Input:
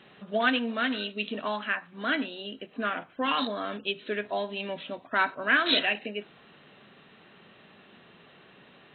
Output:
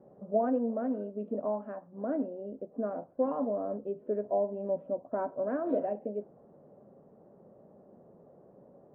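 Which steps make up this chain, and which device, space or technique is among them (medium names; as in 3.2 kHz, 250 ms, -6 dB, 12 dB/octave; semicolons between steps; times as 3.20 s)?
under water (low-pass 760 Hz 24 dB/octave; peaking EQ 550 Hz +8.5 dB 0.39 oct); trim -1 dB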